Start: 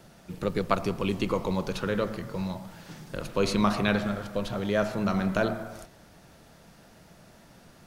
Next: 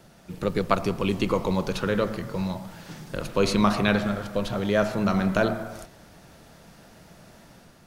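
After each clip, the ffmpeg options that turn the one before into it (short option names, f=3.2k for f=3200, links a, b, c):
-af "dynaudnorm=f=100:g=7:m=3.5dB"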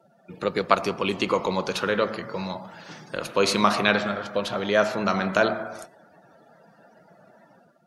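-af "highpass=f=550:p=1,afftdn=nr=25:nf=-52,volume=5dB"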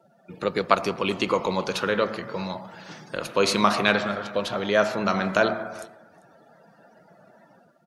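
-af "aecho=1:1:393:0.0631"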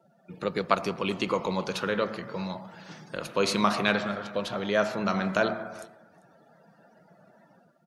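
-af "equalizer=f=170:w=1.9:g=4,volume=-4.5dB"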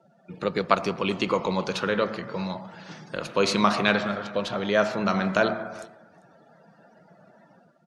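-af "lowpass=7.7k,volume=3dB"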